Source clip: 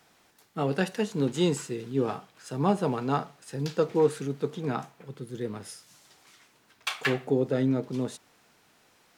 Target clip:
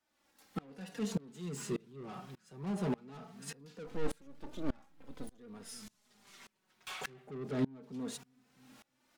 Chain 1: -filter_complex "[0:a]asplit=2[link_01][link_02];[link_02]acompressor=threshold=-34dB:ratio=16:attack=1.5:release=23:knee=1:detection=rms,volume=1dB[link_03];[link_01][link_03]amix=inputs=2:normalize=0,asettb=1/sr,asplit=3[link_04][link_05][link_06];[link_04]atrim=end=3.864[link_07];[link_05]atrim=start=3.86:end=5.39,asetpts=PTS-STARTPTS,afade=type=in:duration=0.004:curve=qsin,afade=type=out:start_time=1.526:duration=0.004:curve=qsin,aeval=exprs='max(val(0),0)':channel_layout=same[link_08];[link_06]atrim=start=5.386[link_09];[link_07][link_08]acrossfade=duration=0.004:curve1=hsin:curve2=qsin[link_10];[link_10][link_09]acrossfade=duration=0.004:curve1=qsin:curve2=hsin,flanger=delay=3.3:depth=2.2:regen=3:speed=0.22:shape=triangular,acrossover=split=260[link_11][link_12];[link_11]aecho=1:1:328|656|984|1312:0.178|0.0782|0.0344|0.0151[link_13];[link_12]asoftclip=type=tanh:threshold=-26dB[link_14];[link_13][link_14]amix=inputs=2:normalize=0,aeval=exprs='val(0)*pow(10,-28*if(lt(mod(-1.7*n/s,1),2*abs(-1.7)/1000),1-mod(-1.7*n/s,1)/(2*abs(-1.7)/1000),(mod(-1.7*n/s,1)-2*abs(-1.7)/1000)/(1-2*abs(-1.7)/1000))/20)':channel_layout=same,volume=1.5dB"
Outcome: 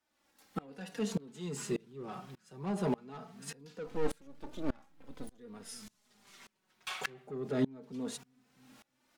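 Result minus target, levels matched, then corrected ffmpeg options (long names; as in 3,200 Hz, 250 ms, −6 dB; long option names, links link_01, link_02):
soft clipping: distortion −6 dB
-filter_complex "[0:a]asplit=2[link_01][link_02];[link_02]acompressor=threshold=-34dB:ratio=16:attack=1.5:release=23:knee=1:detection=rms,volume=1dB[link_03];[link_01][link_03]amix=inputs=2:normalize=0,asettb=1/sr,asplit=3[link_04][link_05][link_06];[link_04]atrim=end=3.864[link_07];[link_05]atrim=start=3.86:end=5.39,asetpts=PTS-STARTPTS,afade=type=in:duration=0.004:curve=qsin,afade=type=out:start_time=1.526:duration=0.004:curve=qsin,aeval=exprs='max(val(0),0)':channel_layout=same[link_08];[link_06]atrim=start=5.386[link_09];[link_07][link_08]acrossfade=duration=0.004:curve1=hsin:curve2=qsin[link_10];[link_10][link_09]acrossfade=duration=0.004:curve1=qsin:curve2=hsin,flanger=delay=3.3:depth=2.2:regen=3:speed=0.22:shape=triangular,acrossover=split=260[link_11][link_12];[link_11]aecho=1:1:328|656|984|1312:0.178|0.0782|0.0344|0.0151[link_13];[link_12]asoftclip=type=tanh:threshold=-34.5dB[link_14];[link_13][link_14]amix=inputs=2:normalize=0,aeval=exprs='val(0)*pow(10,-28*if(lt(mod(-1.7*n/s,1),2*abs(-1.7)/1000),1-mod(-1.7*n/s,1)/(2*abs(-1.7)/1000),(mod(-1.7*n/s,1)-2*abs(-1.7)/1000)/(1-2*abs(-1.7)/1000))/20)':channel_layout=same,volume=1.5dB"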